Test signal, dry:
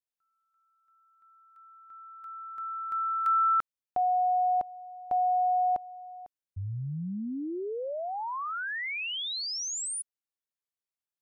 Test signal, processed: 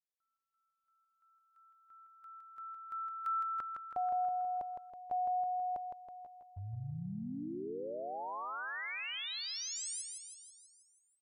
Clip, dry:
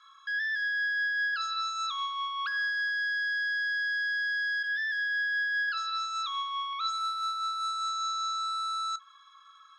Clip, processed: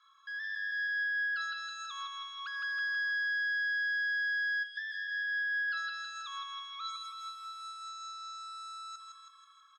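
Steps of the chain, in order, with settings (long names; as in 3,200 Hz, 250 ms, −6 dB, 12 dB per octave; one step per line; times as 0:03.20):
repeating echo 162 ms, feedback 58%, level −5 dB
level −8.5 dB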